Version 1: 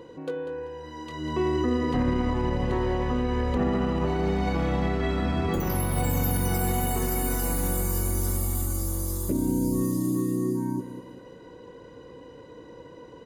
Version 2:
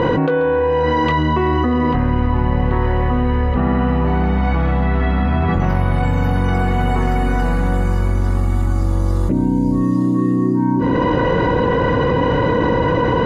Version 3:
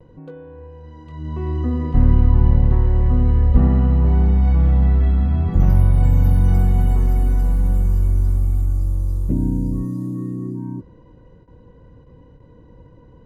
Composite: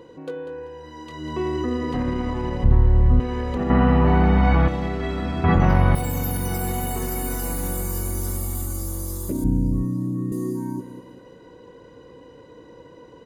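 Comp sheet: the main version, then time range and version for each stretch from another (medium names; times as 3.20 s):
1
2.64–3.20 s: from 3
3.70–4.68 s: from 2
5.44–5.95 s: from 2
9.44–10.32 s: from 3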